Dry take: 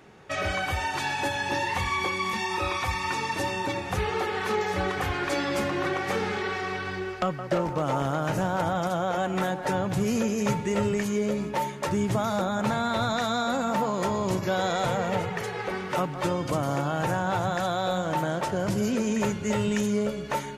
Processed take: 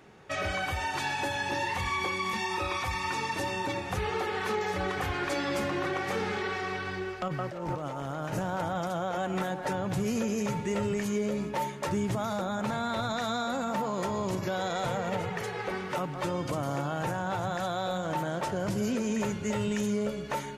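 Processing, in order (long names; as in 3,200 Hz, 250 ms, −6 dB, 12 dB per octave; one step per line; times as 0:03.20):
0:07.28–0:08.33: compressor whose output falls as the input rises −32 dBFS, ratio −1
brickwall limiter −19 dBFS, peak gain reduction 5.5 dB
level −2.5 dB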